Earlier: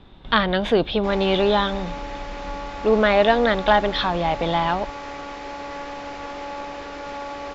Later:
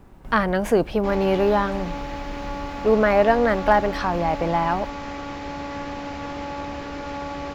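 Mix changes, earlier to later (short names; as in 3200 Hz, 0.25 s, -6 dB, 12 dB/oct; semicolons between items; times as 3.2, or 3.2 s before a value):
speech: remove synth low-pass 3600 Hz, resonance Q 12; background: remove HPF 330 Hz 24 dB/oct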